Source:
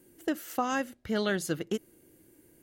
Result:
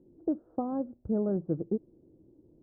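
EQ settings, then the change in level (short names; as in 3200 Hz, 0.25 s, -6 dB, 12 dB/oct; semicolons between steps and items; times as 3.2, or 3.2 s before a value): Gaussian blur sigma 12 samples; air absorption 480 m; +3.5 dB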